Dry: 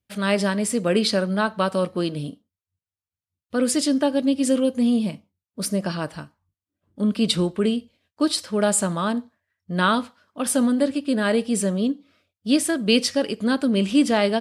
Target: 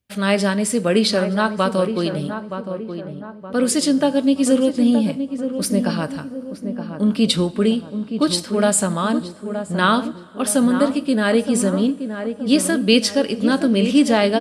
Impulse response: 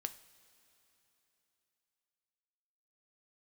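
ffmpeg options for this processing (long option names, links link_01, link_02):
-filter_complex "[0:a]asplit=2[link_01][link_02];[link_02]adelay=921,lowpass=frequency=1300:poles=1,volume=-8dB,asplit=2[link_03][link_04];[link_04]adelay=921,lowpass=frequency=1300:poles=1,volume=0.5,asplit=2[link_05][link_06];[link_06]adelay=921,lowpass=frequency=1300:poles=1,volume=0.5,asplit=2[link_07][link_08];[link_08]adelay=921,lowpass=frequency=1300:poles=1,volume=0.5,asplit=2[link_09][link_10];[link_10]adelay=921,lowpass=frequency=1300:poles=1,volume=0.5,asplit=2[link_11][link_12];[link_12]adelay=921,lowpass=frequency=1300:poles=1,volume=0.5[link_13];[link_01][link_03][link_05][link_07][link_09][link_11][link_13]amix=inputs=7:normalize=0,asplit=2[link_14][link_15];[1:a]atrim=start_sample=2205[link_16];[link_15][link_16]afir=irnorm=-1:irlink=0,volume=1.5dB[link_17];[link_14][link_17]amix=inputs=2:normalize=0,volume=-2.5dB"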